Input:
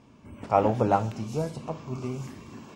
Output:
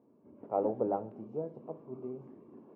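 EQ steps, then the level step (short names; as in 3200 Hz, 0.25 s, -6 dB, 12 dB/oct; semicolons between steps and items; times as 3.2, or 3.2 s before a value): ladder band-pass 270 Hz, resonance 25%; resonant low shelf 300 Hz -8 dB, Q 1.5; +7.5 dB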